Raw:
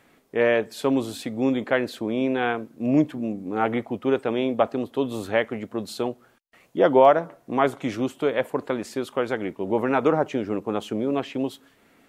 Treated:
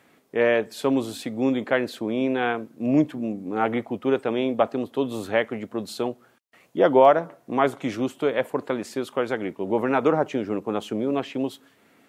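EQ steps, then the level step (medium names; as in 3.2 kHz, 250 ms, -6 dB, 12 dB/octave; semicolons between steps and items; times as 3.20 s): high-pass 94 Hz; 0.0 dB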